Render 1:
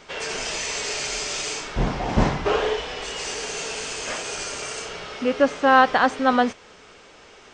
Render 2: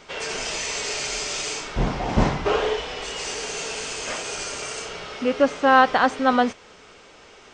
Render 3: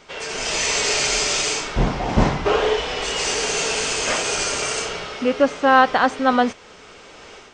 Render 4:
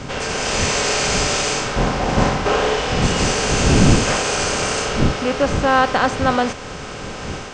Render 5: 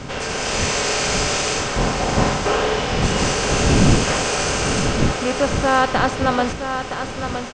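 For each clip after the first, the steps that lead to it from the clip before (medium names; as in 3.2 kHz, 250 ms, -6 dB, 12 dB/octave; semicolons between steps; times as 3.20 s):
band-stop 1.7 kHz, Q 29
level rider gain up to 9 dB; trim -1 dB
spectral levelling over time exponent 0.6; wind noise 210 Hz -20 dBFS; trim -3 dB
delay 968 ms -8.5 dB; trim -1.5 dB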